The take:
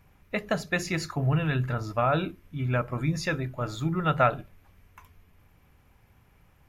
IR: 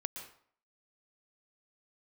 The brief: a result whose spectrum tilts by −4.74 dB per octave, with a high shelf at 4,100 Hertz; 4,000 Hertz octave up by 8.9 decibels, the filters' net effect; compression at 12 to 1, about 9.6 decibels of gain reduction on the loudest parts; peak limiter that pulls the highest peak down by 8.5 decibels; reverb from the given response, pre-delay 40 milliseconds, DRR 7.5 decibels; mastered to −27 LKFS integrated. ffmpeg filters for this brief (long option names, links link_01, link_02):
-filter_complex "[0:a]equalizer=frequency=4000:width_type=o:gain=6.5,highshelf=frequency=4100:gain=7.5,acompressor=threshold=-25dB:ratio=12,alimiter=limit=-23.5dB:level=0:latency=1,asplit=2[link_01][link_02];[1:a]atrim=start_sample=2205,adelay=40[link_03];[link_02][link_03]afir=irnorm=-1:irlink=0,volume=-7.5dB[link_04];[link_01][link_04]amix=inputs=2:normalize=0,volume=5.5dB"